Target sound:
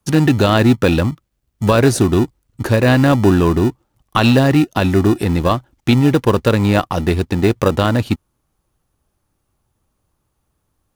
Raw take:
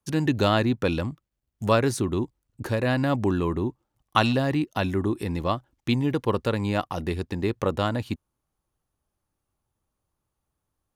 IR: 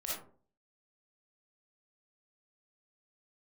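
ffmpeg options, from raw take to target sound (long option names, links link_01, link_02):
-filter_complex "[0:a]asplit=2[link_01][link_02];[link_02]acrusher=samples=41:mix=1:aa=0.000001,volume=-11.5dB[link_03];[link_01][link_03]amix=inputs=2:normalize=0,alimiter=level_in=11.5dB:limit=-1dB:release=50:level=0:latency=1,volume=-1dB"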